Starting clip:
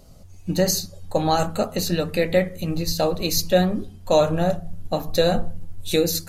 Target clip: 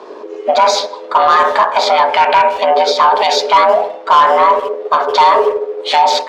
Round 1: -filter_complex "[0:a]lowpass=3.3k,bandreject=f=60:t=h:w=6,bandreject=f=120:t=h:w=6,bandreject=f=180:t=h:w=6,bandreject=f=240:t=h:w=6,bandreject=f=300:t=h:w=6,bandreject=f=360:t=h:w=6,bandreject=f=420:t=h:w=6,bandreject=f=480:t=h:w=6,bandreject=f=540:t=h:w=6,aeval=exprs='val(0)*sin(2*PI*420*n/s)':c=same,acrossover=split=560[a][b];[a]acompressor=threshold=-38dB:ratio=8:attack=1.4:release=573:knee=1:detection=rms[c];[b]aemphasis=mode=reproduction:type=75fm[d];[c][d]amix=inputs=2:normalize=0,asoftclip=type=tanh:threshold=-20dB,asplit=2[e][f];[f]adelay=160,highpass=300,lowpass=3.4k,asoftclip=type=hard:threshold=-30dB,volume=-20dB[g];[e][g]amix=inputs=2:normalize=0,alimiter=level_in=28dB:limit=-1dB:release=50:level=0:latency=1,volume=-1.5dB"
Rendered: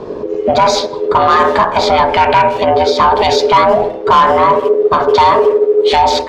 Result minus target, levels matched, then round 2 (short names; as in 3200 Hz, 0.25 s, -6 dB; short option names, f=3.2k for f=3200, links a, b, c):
500 Hz band +2.5 dB
-filter_complex "[0:a]lowpass=3.3k,bandreject=f=60:t=h:w=6,bandreject=f=120:t=h:w=6,bandreject=f=180:t=h:w=6,bandreject=f=240:t=h:w=6,bandreject=f=300:t=h:w=6,bandreject=f=360:t=h:w=6,bandreject=f=420:t=h:w=6,bandreject=f=480:t=h:w=6,bandreject=f=540:t=h:w=6,aeval=exprs='val(0)*sin(2*PI*420*n/s)':c=same,acrossover=split=560[a][b];[a]acompressor=threshold=-38dB:ratio=8:attack=1.4:release=573:knee=1:detection=rms,highpass=f=380:w=0.5412,highpass=f=380:w=1.3066[c];[b]aemphasis=mode=reproduction:type=75fm[d];[c][d]amix=inputs=2:normalize=0,asoftclip=type=tanh:threshold=-20dB,asplit=2[e][f];[f]adelay=160,highpass=300,lowpass=3.4k,asoftclip=type=hard:threshold=-30dB,volume=-20dB[g];[e][g]amix=inputs=2:normalize=0,alimiter=level_in=28dB:limit=-1dB:release=50:level=0:latency=1,volume=-1.5dB"